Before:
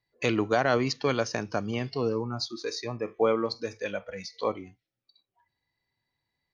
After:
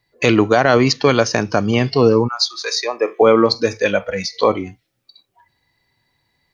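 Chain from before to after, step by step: 2.27–3.21 s: high-pass 1.1 kHz -> 280 Hz 24 dB/octave; in parallel at +1 dB: gain riding 2 s; on the sum: loudness maximiser +8.5 dB; trim -1 dB

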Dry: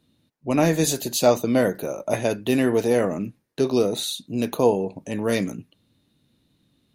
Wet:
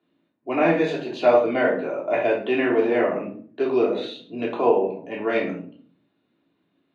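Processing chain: simulated room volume 490 m³, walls furnished, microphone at 3.2 m; dynamic bell 2.5 kHz, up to +5 dB, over -39 dBFS, Q 1; band-pass 150–4200 Hz; three-band isolator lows -14 dB, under 290 Hz, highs -23 dB, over 2.9 kHz; trim -2.5 dB

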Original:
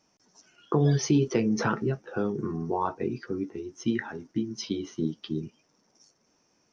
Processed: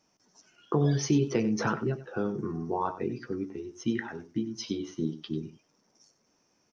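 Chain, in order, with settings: delay 94 ms -14 dB; trim -2 dB

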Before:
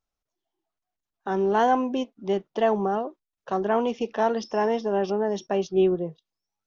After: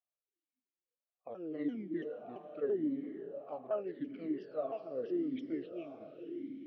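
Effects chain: sawtooth pitch modulation -9.5 st, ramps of 337 ms; echo that smears into a reverb 477 ms, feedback 51%, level -8 dB; talking filter a-i 0.84 Hz; trim -4 dB

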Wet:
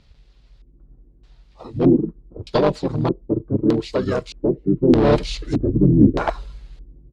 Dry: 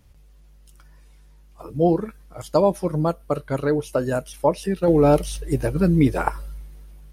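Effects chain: harmony voices -5 st 0 dB, -4 st -5 dB; one-sided clip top -12 dBFS; LFO low-pass square 0.81 Hz 320–4200 Hz; trim -2 dB

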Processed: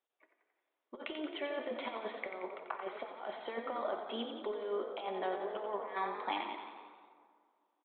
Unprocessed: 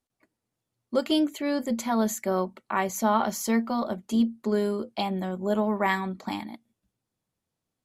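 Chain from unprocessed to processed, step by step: high-pass 400 Hz 24 dB/octave; compressor with a negative ratio -33 dBFS, ratio -0.5; resampled via 8 kHz; frequency-shifting echo 89 ms, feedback 60%, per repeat +44 Hz, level -8 dB; plate-style reverb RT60 2.1 s, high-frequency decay 0.55×, DRR 8 dB; trim -5.5 dB

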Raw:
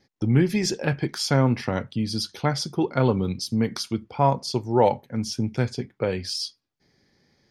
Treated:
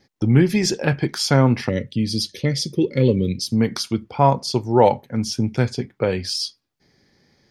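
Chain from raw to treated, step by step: time-frequency box 1.69–3.46 s, 590–1700 Hz -22 dB; trim +4.5 dB

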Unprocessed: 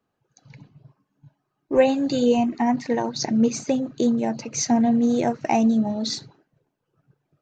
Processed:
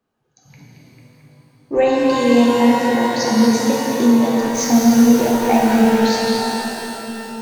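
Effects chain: 4.40–5.98 s: send-on-delta sampling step -30.5 dBFS; repeats whose band climbs or falls 223 ms, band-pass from 3.5 kHz, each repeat -0.7 oct, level -2 dB; pitch-shifted reverb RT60 3 s, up +12 st, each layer -8 dB, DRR -4 dB

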